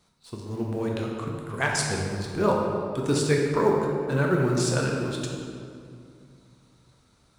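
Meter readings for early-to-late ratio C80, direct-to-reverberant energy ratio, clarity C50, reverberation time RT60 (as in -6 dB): 2.5 dB, -1.5 dB, 1.0 dB, 2.4 s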